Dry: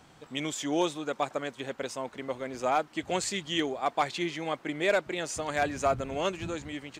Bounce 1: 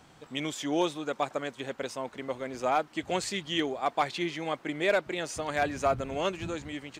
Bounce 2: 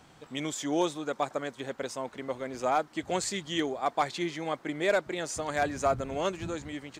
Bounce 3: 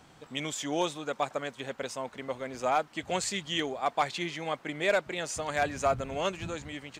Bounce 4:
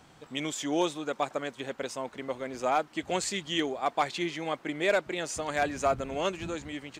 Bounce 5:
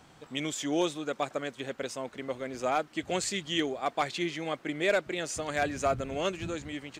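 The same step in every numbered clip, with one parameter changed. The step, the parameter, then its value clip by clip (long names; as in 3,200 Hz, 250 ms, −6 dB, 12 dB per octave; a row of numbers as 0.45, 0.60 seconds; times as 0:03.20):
dynamic equaliser, frequency: 7,300, 2,700, 330, 110, 920 Hertz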